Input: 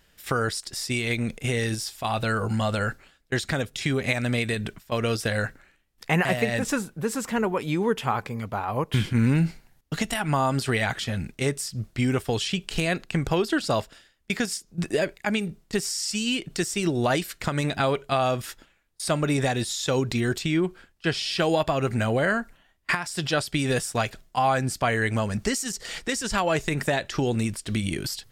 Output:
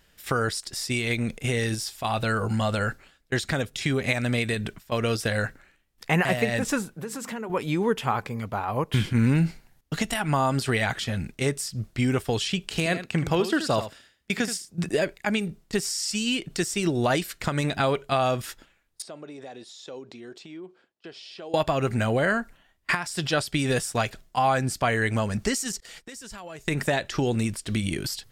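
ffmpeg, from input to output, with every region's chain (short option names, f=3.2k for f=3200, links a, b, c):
-filter_complex "[0:a]asettb=1/sr,asplit=3[a][b][c];[a]atrim=end=6.964[d];[b]atrim=start=6.96:end=7.5,asetpts=PTS-STARTPTS,afade=t=in:d=0.004:c=qsin,afade=t=out:st=0.536:d=0.004:c=qsin,highpass=130,bandreject=f=50:t=h:w=6,bandreject=f=100:t=h:w=6,bandreject=f=150:t=h:w=6,bandreject=f=200:t=h:w=6,bandreject=f=250:t=h:w=6,bandreject=f=300:t=h:w=6,bandreject=f=350:t=h:w=6,acompressor=threshold=-30dB:ratio=6:attack=3.2:release=140:knee=1:detection=peak[e];[c]atrim=start=7.496[f];[d][e]acrossfade=d=0.004:c1=hsin:c2=qsin[g];[g][f]acrossfade=d=0.004:c1=qsin:c2=hsin,asettb=1/sr,asplit=3[h][i][j];[h]atrim=end=12.704[k];[i]atrim=start=12.7:end=14.89,asetpts=PTS-STARTPTS,afade=t=in:d=0.004:c=qsin,afade=t=out:st=2.186:d=0.004:c=qsin,highpass=57,aecho=1:1:78:0.282,atrim=end_sample=96579[l];[j]atrim=start=14.886[m];[k][l]acrossfade=d=0.004:c1=hsin:c2=qsin[n];[n][m]acrossfade=d=0.004:c1=qsin:c2=hsin,asettb=1/sr,asplit=3[o][p][q];[o]atrim=end=19.024[r];[p]atrim=start=19.02:end=21.54,asetpts=PTS-STARTPTS,afade=t=in:d=0.004:c=qsin,afade=t=out:st=2.516:d=0.004:c=qsin,acompressor=threshold=-27dB:ratio=5:attack=3.2:release=140:knee=1:detection=peak,highpass=430,lowpass=3.5k,equalizer=f=1.8k:w=0.46:g=-13.5[s];[q]atrim=start=21.536[t];[r][s]acrossfade=d=0.004:c1=hsin:c2=qsin[u];[u][t]acrossfade=d=0.004:c1=qsin:c2=hsin,asettb=1/sr,asplit=3[v][w][x];[v]atrim=end=25.804[y];[w]atrim=start=25.8:end=26.68,asetpts=PTS-STARTPTS,afade=t=in:d=0.004:c=qsin,afade=t=out:st=0.876:d=0.004:c=qsin,agate=range=-33dB:threshold=-33dB:ratio=3:release=100:detection=peak,highshelf=f=10k:g=9,acompressor=threshold=-43dB:ratio=3:attack=3.2:release=140:knee=1:detection=peak[z];[x]atrim=start=26.676[aa];[y][z]acrossfade=d=0.004:c1=hsin:c2=qsin[ab];[ab][aa]acrossfade=d=0.004:c1=qsin:c2=hsin"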